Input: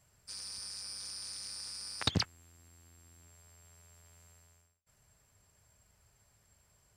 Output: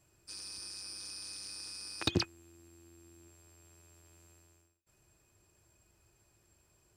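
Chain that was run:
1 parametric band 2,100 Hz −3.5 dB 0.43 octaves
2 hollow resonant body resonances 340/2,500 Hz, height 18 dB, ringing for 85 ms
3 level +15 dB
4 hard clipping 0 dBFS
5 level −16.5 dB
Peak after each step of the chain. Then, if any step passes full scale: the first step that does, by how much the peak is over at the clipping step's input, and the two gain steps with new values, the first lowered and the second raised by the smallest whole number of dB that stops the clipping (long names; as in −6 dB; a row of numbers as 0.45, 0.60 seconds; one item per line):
−14.0, −11.5, +3.5, 0.0, −16.5 dBFS
step 3, 3.5 dB
step 3 +11 dB, step 5 −12.5 dB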